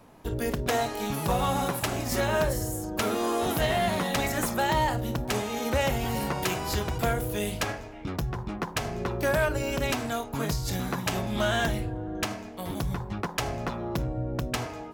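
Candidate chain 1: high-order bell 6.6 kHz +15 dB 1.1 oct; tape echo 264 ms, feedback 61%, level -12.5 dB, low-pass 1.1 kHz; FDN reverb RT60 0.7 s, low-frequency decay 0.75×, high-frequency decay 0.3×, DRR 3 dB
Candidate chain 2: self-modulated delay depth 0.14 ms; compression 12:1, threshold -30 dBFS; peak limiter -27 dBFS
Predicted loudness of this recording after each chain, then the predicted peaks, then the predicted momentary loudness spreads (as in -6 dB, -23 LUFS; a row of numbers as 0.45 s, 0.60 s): -24.0 LUFS, -36.5 LUFS; -3.5 dBFS, -27.0 dBFS; 9 LU, 3 LU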